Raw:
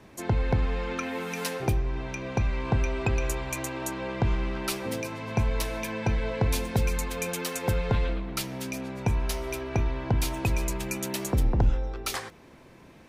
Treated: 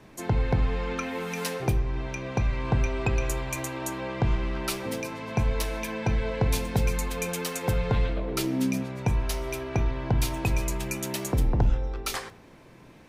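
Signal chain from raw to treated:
0:08.16–0:08.82: parametric band 620 Hz → 170 Hz +15 dB 0.69 octaves
rectangular room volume 390 cubic metres, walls furnished, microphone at 0.43 metres

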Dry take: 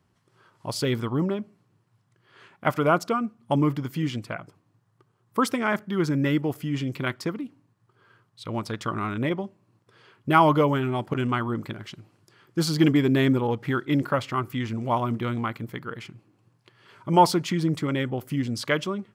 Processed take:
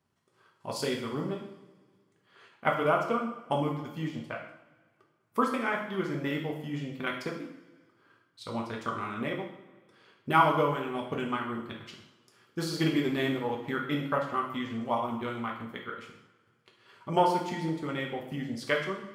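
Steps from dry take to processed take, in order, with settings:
transient designer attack +4 dB, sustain −11 dB
low-shelf EQ 190 Hz −8.5 dB
coupled-rooms reverb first 0.66 s, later 2 s, from −18 dB, DRR −1 dB
level −8 dB

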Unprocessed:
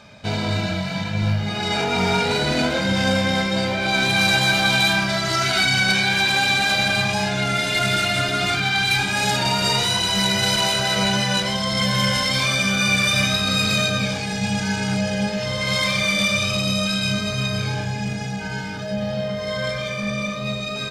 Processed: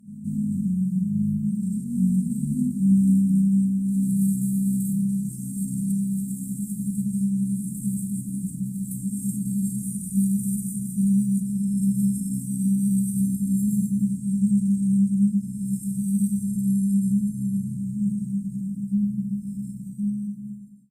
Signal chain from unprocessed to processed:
fade-out on the ending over 1.18 s
Chebyshev band-stop filter 240–8,200 Hz, order 5
low shelf with overshoot 140 Hz −8.5 dB, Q 3
echo ahead of the sound 175 ms −14 dB

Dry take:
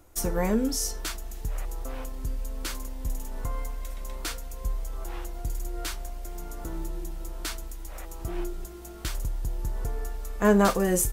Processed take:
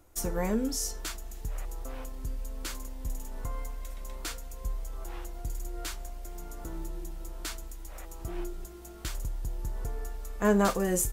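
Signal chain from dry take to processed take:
dynamic equaliser 7,100 Hz, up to +4 dB, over −57 dBFS, Q 7.3
level −4 dB

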